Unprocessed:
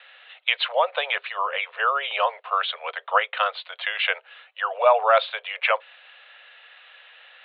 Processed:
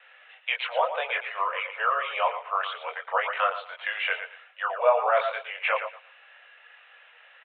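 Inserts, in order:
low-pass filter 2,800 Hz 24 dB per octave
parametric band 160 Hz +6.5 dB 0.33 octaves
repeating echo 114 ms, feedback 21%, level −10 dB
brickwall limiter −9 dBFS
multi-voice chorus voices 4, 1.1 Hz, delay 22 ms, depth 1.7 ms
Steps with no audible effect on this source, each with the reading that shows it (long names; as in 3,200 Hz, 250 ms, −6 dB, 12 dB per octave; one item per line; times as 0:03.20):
parametric band 160 Hz: nothing at its input below 400 Hz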